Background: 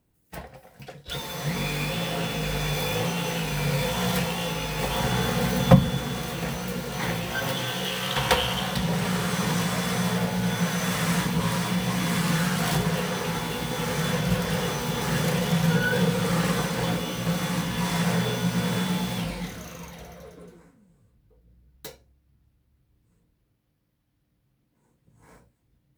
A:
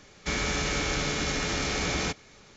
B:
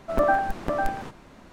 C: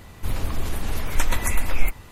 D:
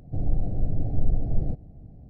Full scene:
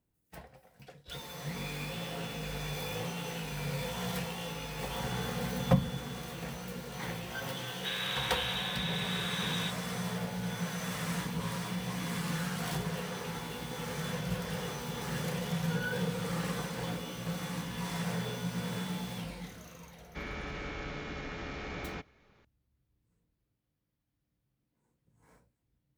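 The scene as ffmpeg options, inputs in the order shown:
-filter_complex "[1:a]asplit=2[a][b];[0:a]volume=-10.5dB[c];[a]lowpass=f=3.3k:t=q:w=0.5098,lowpass=f=3.3k:t=q:w=0.6013,lowpass=f=3.3k:t=q:w=0.9,lowpass=f=3.3k:t=q:w=2.563,afreqshift=-3900[d];[b]lowpass=2.6k[e];[d]atrim=end=2.56,asetpts=PTS-STARTPTS,volume=-8dB,afade=t=in:d=0.004:c=hsin,afade=t=out:st=2.556:d=0.004:c=hsin,adelay=7580[f];[e]atrim=end=2.56,asetpts=PTS-STARTPTS,volume=-10dB,afade=t=in:d=0.004:c=hsin,afade=t=out:st=2.556:d=0.004:c=hsin,adelay=19890[g];[c][f][g]amix=inputs=3:normalize=0"

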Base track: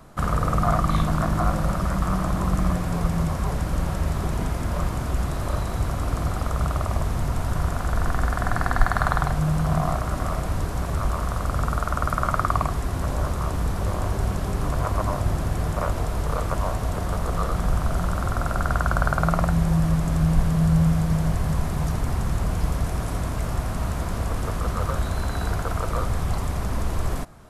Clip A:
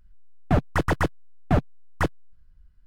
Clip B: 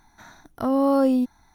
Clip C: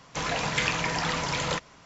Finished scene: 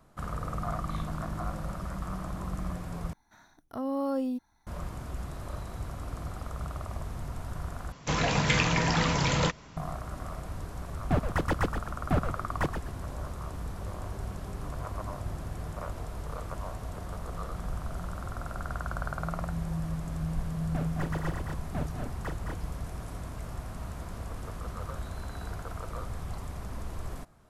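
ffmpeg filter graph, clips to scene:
-filter_complex "[1:a]asplit=2[a][b];[0:a]volume=-12.5dB[c];[3:a]lowshelf=f=280:g=10[d];[a]asplit=5[e][f][g][h][i];[f]adelay=124,afreqshift=-110,volume=-7.5dB[j];[g]adelay=248,afreqshift=-220,volume=-17.1dB[k];[h]adelay=372,afreqshift=-330,volume=-26.8dB[l];[i]adelay=496,afreqshift=-440,volume=-36.4dB[m];[e][j][k][l][m]amix=inputs=5:normalize=0[n];[b]aecho=1:1:40.82|212.8|244.9:0.398|0.447|0.562[o];[c]asplit=3[p][q][r];[p]atrim=end=3.134[s];[2:a]atrim=end=1.54,asetpts=PTS-STARTPTS,volume=-11dB[t];[q]atrim=start=4.666:end=7.924[u];[d]atrim=end=1.85,asetpts=PTS-STARTPTS,volume=-0.5dB[v];[r]atrim=start=9.766[w];[n]atrim=end=2.86,asetpts=PTS-STARTPTS,volume=-6dB,afade=t=in:d=0.004:c=hsin,afade=t=out:st=2.856:d=0.004:c=hsin,adelay=10600[x];[o]atrim=end=2.86,asetpts=PTS-STARTPTS,volume=-14dB,afade=t=in:d=0.004:c=hsin,afade=t=out:st=2.856:d=0.004:c=hsin,adelay=20240[y];[s][t]acrossfade=d=0.004:c1=hsin:c2=hsin[z];[z][u]acrossfade=d=0.004:c1=hsin:c2=hsin[aa];[aa][v]acrossfade=d=0.004:c1=hsin:c2=hsin[ab];[ab][w]acrossfade=d=0.004:c1=hsin:c2=hsin[ac];[ac][x][y]amix=inputs=3:normalize=0"

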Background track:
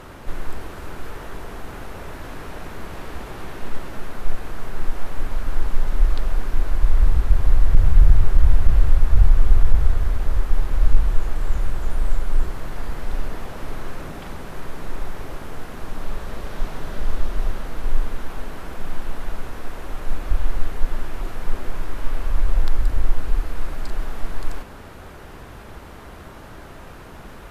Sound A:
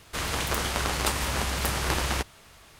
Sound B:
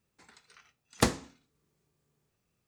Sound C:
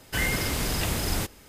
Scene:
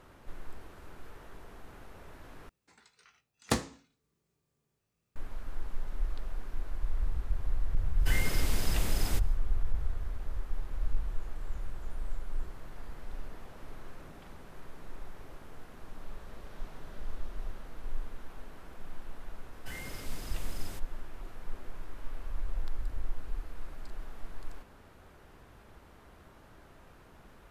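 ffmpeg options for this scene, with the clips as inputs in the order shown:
-filter_complex "[3:a]asplit=2[a][b];[0:a]volume=-16dB[c];[2:a]asplit=2[d][e];[e]adelay=18,volume=-10.5dB[f];[d][f]amix=inputs=2:normalize=0[g];[b]aresample=32000,aresample=44100[h];[c]asplit=2[i][j];[i]atrim=end=2.494[k];[g]atrim=end=2.67,asetpts=PTS-STARTPTS,volume=-4dB[l];[j]atrim=start=5.156[m];[a]atrim=end=1.48,asetpts=PTS-STARTPTS,volume=-8dB,afade=t=in:d=0.1,afade=t=out:st=1.38:d=0.1,adelay=7930[n];[h]atrim=end=1.48,asetpts=PTS-STARTPTS,volume=-17.5dB,afade=t=in:d=0.004:c=hsin,afade=t=out:st=1.476:d=0.004:c=hsin,adelay=19530[o];[k][l]acrossfade=d=0.004:c1=hsin:c2=hsin[p];[p][m]acrossfade=d=0.004:c1=hsin:c2=hsin[q];[q][n][o]amix=inputs=3:normalize=0"

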